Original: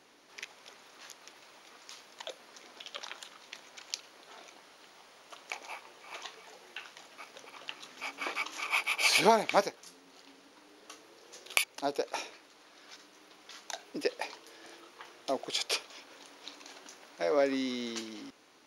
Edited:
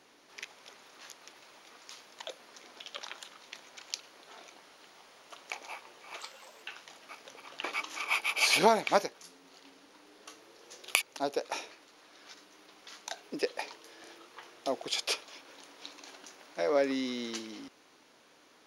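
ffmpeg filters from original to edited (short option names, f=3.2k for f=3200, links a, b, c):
-filter_complex "[0:a]asplit=4[a][b][c][d];[a]atrim=end=6.194[e];[b]atrim=start=6.19:end=6.72,asetpts=PTS-STARTPTS,asetrate=53361,aresample=44100[f];[c]atrim=start=6.716:end=7.732[g];[d]atrim=start=8.258[h];[e][f]acrossfade=d=0.004:c1=hsin:c2=hsin[i];[i][g]acrossfade=d=0.004:c1=hsin:c2=hsin[j];[j][h]acrossfade=d=0.004:c1=hsin:c2=hsin"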